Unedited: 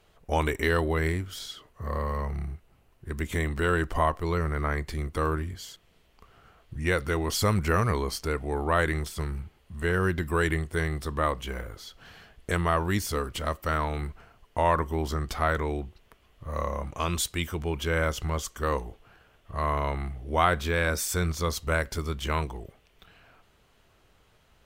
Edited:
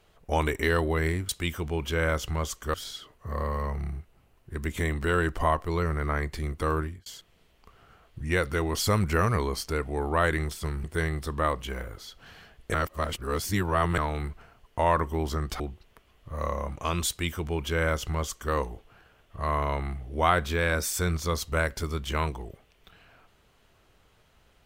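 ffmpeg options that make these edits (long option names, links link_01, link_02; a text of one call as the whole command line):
ffmpeg -i in.wav -filter_complex "[0:a]asplit=8[link_01][link_02][link_03][link_04][link_05][link_06][link_07][link_08];[link_01]atrim=end=1.292[link_09];[link_02]atrim=start=17.228:end=18.682[link_10];[link_03]atrim=start=1.288:end=5.61,asetpts=PTS-STARTPTS,afade=type=out:start_time=4.072:duration=0.25[link_11];[link_04]atrim=start=5.61:end=9.392,asetpts=PTS-STARTPTS,afade=type=in:duration=0.004:curve=hsin[link_12];[link_05]atrim=start=10.628:end=12.532[link_13];[link_06]atrim=start=12.528:end=13.772,asetpts=PTS-STARTPTS,areverse[link_14];[link_07]atrim=start=13.768:end=15.392[link_15];[link_08]atrim=start=15.748[link_16];[link_09][link_10]acrossfade=duration=0.004:curve1=hsin:curve2=hsin[link_17];[link_11][link_12]concat=n=2:v=0:a=1[link_18];[link_17][link_18]acrossfade=duration=0.004:curve1=hsin:curve2=hsin[link_19];[link_19][link_13]acrossfade=duration=0.004:curve1=hsin:curve2=hsin[link_20];[link_20][link_14]acrossfade=duration=0.004:curve1=hsin:curve2=hsin[link_21];[link_21][link_15]acrossfade=duration=0.004:curve1=hsin:curve2=hsin[link_22];[link_22][link_16]acrossfade=duration=0.004:curve1=hsin:curve2=hsin" out.wav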